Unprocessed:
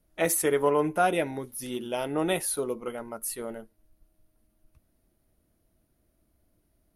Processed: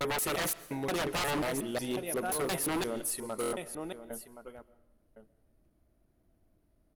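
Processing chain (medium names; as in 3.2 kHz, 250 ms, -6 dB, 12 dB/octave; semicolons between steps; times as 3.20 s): slices played last to first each 178 ms, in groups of 4; on a send: delay 1071 ms -12.5 dB; on the sum: wavefolder -26.5 dBFS; algorithmic reverb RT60 0.88 s, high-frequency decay 0.95×, pre-delay 90 ms, DRR 18 dB; vibrato 0.52 Hz 45 cents; buffer glitch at 3.41 s, samples 1024, times 4; tape noise reduction on one side only decoder only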